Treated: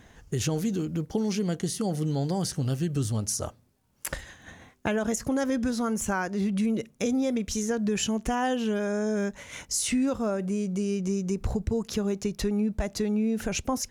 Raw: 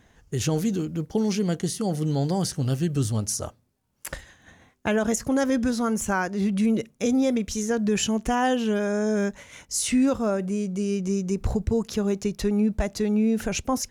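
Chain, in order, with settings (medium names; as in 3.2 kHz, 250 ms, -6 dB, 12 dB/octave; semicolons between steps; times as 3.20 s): compression 2:1, threshold -35 dBFS, peak gain reduction 9.5 dB; trim +4.5 dB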